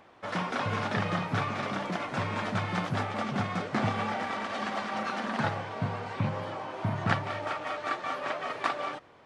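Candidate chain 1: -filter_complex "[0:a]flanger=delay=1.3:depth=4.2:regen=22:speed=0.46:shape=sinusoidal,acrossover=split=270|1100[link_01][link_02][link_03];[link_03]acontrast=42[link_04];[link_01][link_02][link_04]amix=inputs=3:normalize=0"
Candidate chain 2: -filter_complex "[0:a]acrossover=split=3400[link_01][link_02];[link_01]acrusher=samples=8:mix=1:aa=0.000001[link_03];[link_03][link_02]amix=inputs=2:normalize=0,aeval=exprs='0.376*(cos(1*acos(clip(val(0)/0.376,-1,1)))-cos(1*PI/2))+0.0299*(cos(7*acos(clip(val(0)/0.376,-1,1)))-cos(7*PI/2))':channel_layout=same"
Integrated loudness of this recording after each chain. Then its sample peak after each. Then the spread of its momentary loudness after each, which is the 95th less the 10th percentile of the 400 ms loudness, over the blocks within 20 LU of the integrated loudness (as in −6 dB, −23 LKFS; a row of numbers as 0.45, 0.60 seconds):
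−33.0, −37.0 LKFS; −10.5, −8.5 dBFS; 6, 6 LU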